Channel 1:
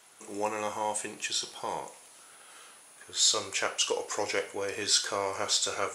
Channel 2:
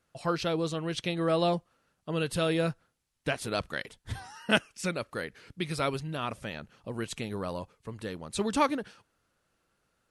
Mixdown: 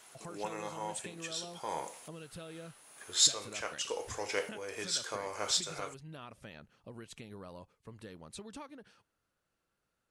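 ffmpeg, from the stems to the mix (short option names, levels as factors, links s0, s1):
-filter_complex "[0:a]volume=1.06[s0];[1:a]acompressor=threshold=0.0178:ratio=16,volume=0.376,asplit=2[s1][s2];[s2]apad=whole_len=262316[s3];[s0][s3]sidechaincompress=threshold=0.00251:ratio=5:attack=7:release=528[s4];[s4][s1]amix=inputs=2:normalize=0"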